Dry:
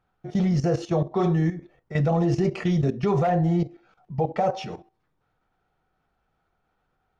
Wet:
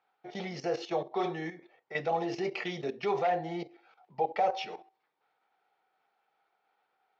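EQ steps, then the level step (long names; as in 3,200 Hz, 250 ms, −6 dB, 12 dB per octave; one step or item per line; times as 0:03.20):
dynamic equaliser 970 Hz, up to −4 dB, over −38 dBFS, Q 0.82
loudspeaker in its box 430–4,800 Hz, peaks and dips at 430 Hz +4 dB, 820 Hz +8 dB, 2,200 Hz +5 dB
high-shelf EQ 2,400 Hz +8 dB
−5.0 dB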